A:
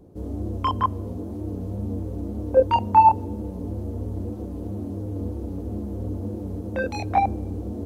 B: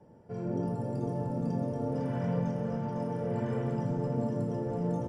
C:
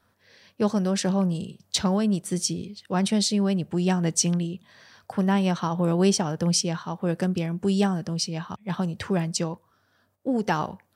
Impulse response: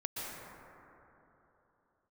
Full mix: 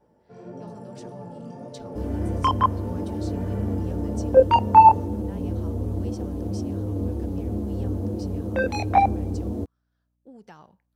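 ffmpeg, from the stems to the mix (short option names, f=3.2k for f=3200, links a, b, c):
-filter_complex "[0:a]adelay=1800,volume=2.5dB[a];[1:a]flanger=delay=15.5:depth=6.6:speed=1.7,lowshelf=f=240:g=-11,volume=1dB[b];[2:a]acompressor=threshold=-30dB:ratio=1.5,aeval=exprs='val(0)+0.00178*(sin(2*PI*60*n/s)+sin(2*PI*2*60*n/s)/2+sin(2*PI*3*60*n/s)/3+sin(2*PI*4*60*n/s)/4+sin(2*PI*5*60*n/s)/5)':c=same,volume=-19dB[c];[a][b][c]amix=inputs=3:normalize=0"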